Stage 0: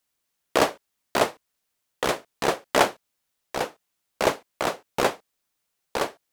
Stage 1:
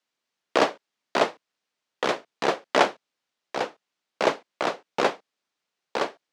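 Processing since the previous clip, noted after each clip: three-band isolator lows -20 dB, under 150 Hz, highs -23 dB, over 6.4 kHz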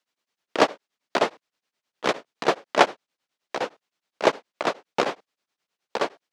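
tremolo of two beating tones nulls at 9.6 Hz; trim +3.5 dB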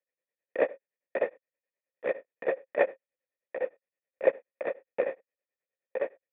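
cascade formant filter e; trim +3 dB

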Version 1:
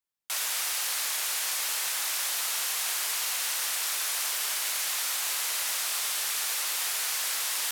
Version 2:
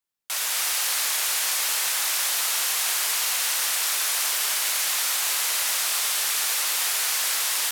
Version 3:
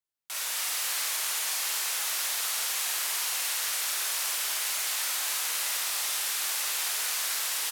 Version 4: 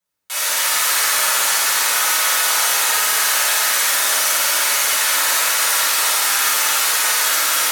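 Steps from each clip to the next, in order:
level rider gain up to 3 dB; trim +2.5 dB
loudspeakers at several distances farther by 17 m -2 dB, 83 m -10 dB; trim -8 dB
reverberation RT60 2.0 s, pre-delay 3 ms, DRR -11 dB; trim +5 dB

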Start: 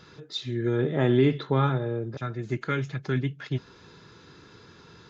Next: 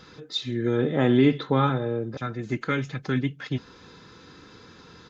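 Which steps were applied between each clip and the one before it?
comb 3.9 ms, depth 34%; trim +2.5 dB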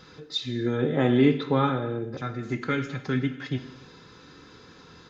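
gated-style reverb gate 310 ms falling, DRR 7.5 dB; trim -1.5 dB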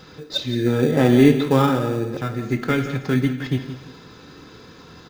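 in parallel at -10 dB: sample-rate reducer 2.1 kHz, jitter 0%; on the sum: feedback delay 171 ms, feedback 29%, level -13 dB; trim +4.5 dB

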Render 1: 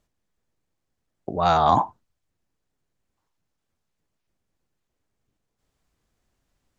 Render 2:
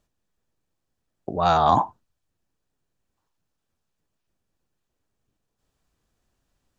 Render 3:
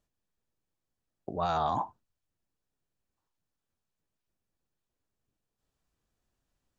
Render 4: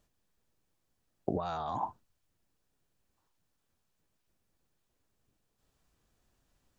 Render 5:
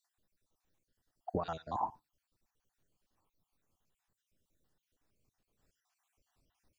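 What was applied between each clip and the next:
band-stop 2.1 kHz, Q 12
peak limiter -12.5 dBFS, peak gain reduction 7 dB; trim -7.5 dB
compressor with a negative ratio -36 dBFS, ratio -1; trim +1.5 dB
random holes in the spectrogram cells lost 51%; on a send at -23 dB: reverberation, pre-delay 3 ms

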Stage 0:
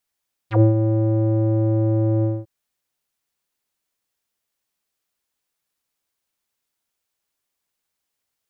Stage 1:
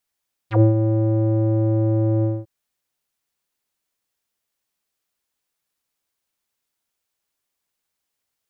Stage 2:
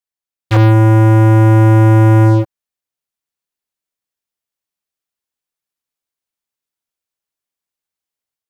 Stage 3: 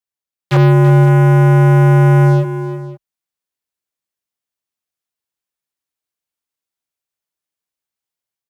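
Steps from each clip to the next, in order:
no audible change
waveshaping leveller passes 5; level rider gain up to 5.5 dB; trim -2.5 dB
multi-tap echo 335/523 ms -13/-17 dB; frequency shift +31 Hz; trim -1 dB

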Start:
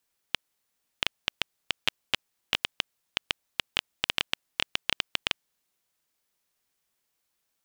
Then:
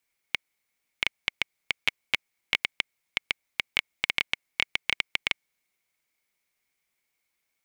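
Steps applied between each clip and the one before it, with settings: peaking EQ 2.2 kHz +15 dB 0.24 oct; trim -2.5 dB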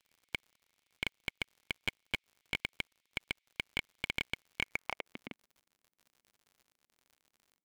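band-pass sweep 3.2 kHz -> 240 Hz, 4.60–5.16 s; crackle 80 per s -56 dBFS; slew-rate limiter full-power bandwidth 96 Hz; trim +4.5 dB

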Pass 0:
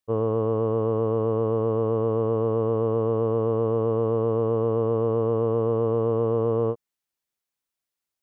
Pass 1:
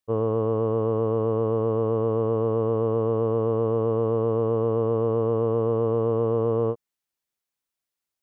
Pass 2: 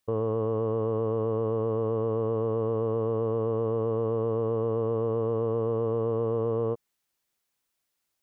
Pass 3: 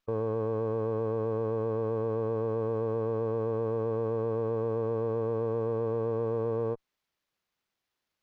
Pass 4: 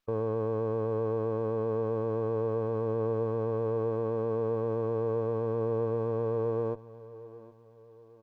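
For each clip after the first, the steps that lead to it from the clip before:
no audible change
peak limiter -25 dBFS, peak gain reduction 11.5 dB; trim +6.5 dB
spectral gate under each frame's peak -30 dB strong; sliding maximum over 5 samples; trim -2.5 dB
feedback delay 766 ms, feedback 42%, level -18 dB

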